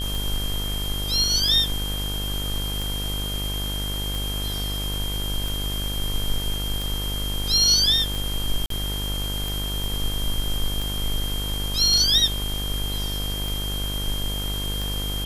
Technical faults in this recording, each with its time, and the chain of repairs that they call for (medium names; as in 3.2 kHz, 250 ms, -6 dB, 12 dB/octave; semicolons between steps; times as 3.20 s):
buzz 50 Hz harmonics 36 -29 dBFS
tick 45 rpm
whine 3.2 kHz -30 dBFS
8.66–8.70 s: dropout 43 ms
9.84 s: pop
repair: de-click; band-stop 3.2 kHz, Q 30; de-hum 50 Hz, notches 36; interpolate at 8.66 s, 43 ms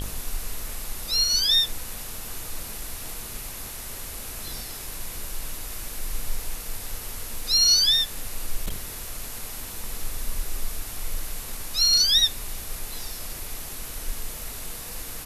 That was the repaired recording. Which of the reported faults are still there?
nothing left